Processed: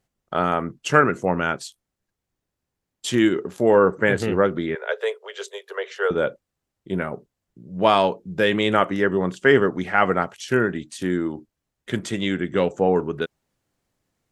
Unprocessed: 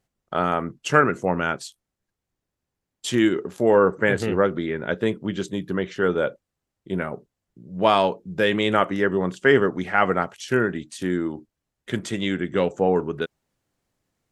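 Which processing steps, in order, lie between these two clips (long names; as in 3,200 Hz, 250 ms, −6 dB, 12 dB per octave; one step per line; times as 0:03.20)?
0:04.75–0:06.11: Butterworth high-pass 410 Hz 96 dB per octave
level +1 dB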